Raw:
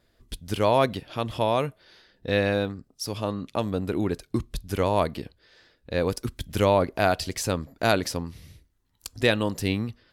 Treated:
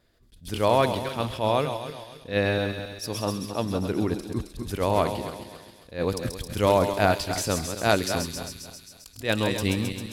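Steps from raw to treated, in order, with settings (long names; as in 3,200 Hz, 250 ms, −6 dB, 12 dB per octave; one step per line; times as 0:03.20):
feedback delay that plays each chunk backwards 136 ms, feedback 55%, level −8.5 dB
delay with a high-pass on its return 133 ms, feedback 73%, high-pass 4,800 Hz, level −3 dB
level that may rise only so fast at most 200 dB per second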